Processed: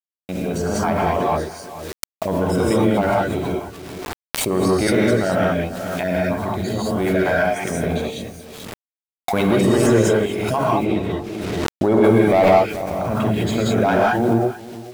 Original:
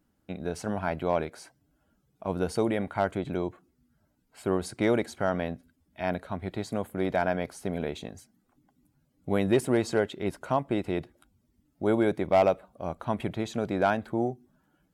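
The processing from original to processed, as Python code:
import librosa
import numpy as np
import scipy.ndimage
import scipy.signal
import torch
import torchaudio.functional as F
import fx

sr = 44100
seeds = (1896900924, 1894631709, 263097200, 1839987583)

y = fx.spec_dropout(x, sr, seeds[0], share_pct=31)
y = fx.leveller(y, sr, passes=1)
y = fx.hum_notches(y, sr, base_hz=50, count=10)
y = y + 10.0 ** (-17.5 / 20.0) * np.pad(y, (int(435 * sr / 1000.0), 0))[:len(y)]
y = fx.rev_gated(y, sr, seeds[1], gate_ms=230, shape='rising', drr_db=-5.0)
y = fx.quant_dither(y, sr, seeds[2], bits=8, dither='none')
y = fx.high_shelf(y, sr, hz=8200.0, db=-11.5, at=(10.84, 12.04))
y = fx.pre_swell(y, sr, db_per_s=22.0)
y = y * librosa.db_to_amplitude(2.0)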